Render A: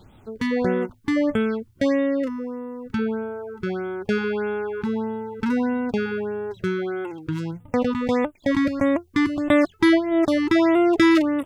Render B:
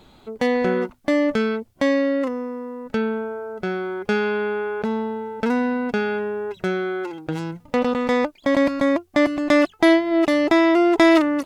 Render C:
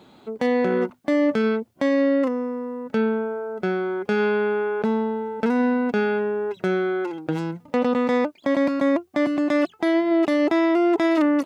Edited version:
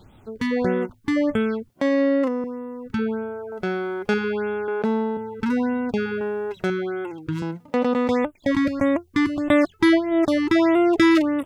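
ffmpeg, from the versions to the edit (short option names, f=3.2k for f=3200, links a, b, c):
-filter_complex "[2:a]asplit=3[a][b][c];[1:a]asplit=2[d][e];[0:a]asplit=6[f][g][h][i][j][k];[f]atrim=end=1.692[l];[a]atrim=start=1.688:end=2.442[m];[g]atrim=start=2.438:end=3.522[n];[d]atrim=start=3.518:end=4.142[o];[h]atrim=start=4.138:end=4.682[p];[b]atrim=start=4.678:end=5.172[q];[i]atrim=start=5.168:end=6.212[r];[e]atrim=start=6.208:end=6.702[s];[j]atrim=start=6.698:end=7.422[t];[c]atrim=start=7.418:end=8.092[u];[k]atrim=start=8.088[v];[l][m]acrossfade=d=0.004:c1=hsin:c2=hsin[w];[w][n]acrossfade=d=0.004:c1=hsin:c2=hsin[x];[x][o]acrossfade=d=0.004:c1=hsin:c2=hsin[y];[y][p]acrossfade=d=0.004:c1=hsin:c2=hsin[z];[z][q]acrossfade=d=0.004:c1=hsin:c2=hsin[aa];[aa][r]acrossfade=d=0.004:c1=hsin:c2=hsin[ab];[ab][s]acrossfade=d=0.004:c1=hsin:c2=hsin[ac];[ac][t]acrossfade=d=0.004:c1=hsin:c2=hsin[ad];[ad][u]acrossfade=d=0.004:c1=hsin:c2=hsin[ae];[ae][v]acrossfade=d=0.004:c1=hsin:c2=hsin"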